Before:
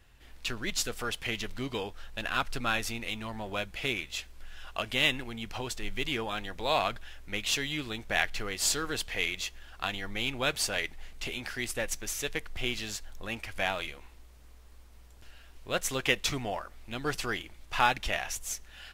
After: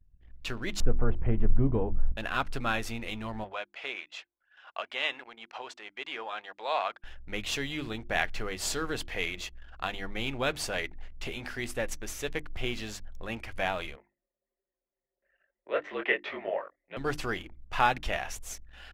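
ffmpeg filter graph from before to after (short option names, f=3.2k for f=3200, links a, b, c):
-filter_complex "[0:a]asettb=1/sr,asplit=3[a][b][c];[a]atrim=end=0.804[d];[b]atrim=start=0.8:end=2.12,asetpts=PTS-STARTPTS,afade=t=in:d=0.004:c=qsin,afade=t=out:st=1.316:d=0.004:c=qsin,lowpass=1.2k,aemphasis=mode=reproduction:type=riaa[e];[c]atrim=start=2.116[f];[d][e]acrossfade=d=0.004:c1=hsin:c2=qsin[g];[g][f]acrossfade=d=0.004:c1=qsin:c2=hsin,asettb=1/sr,asplit=3[h][i][j];[h]atrim=end=3.444[k];[i]atrim=start=3.44:end=7.04,asetpts=PTS-STARTPTS,afade=t=in:d=0.004:c=qsin,afade=t=out:st=3.596:d=0.004:c=qsin,highpass=700,lowpass=6.3k,highshelf=f=3.2k:g=-5[l];[j]atrim=start=7.036[m];[k][l]acrossfade=d=0.004:c1=hsin:c2=qsin[n];[n][m]acrossfade=d=0.004:c1=qsin:c2=hsin,asettb=1/sr,asplit=3[o][p][q];[o]atrim=end=13.964[r];[p]atrim=start=13.96:end=16.97,asetpts=PTS-STARTPTS,afade=t=in:d=0.004:c=qsin,afade=t=out:st=3.006:d=0.004:c=qsin,afreqshift=-50,highpass=370,equalizer=f=390:t=q:w=4:g=5,equalizer=f=580:t=q:w=4:g=8,equalizer=f=1.9k:t=q:w=4:g=9,lowpass=f=3.1k:w=0.5412,lowpass=f=3.1k:w=1.3066,flanger=delay=19:depth=4.9:speed=1.2[s];[q]atrim=start=16.966[t];[r][s]acrossfade=d=0.004:c1=hsin:c2=qsin[u];[u][t]acrossfade=d=0.004:c1=qsin:c2=hsin,anlmdn=0.00251,highshelf=f=2.2k:g=-9,bandreject=f=50:t=h:w=6,bandreject=f=100:t=h:w=6,bandreject=f=150:t=h:w=6,bandreject=f=200:t=h:w=6,bandreject=f=250:t=h:w=6,bandreject=f=300:t=h:w=6,bandreject=f=350:t=h:w=6,volume=2.5dB"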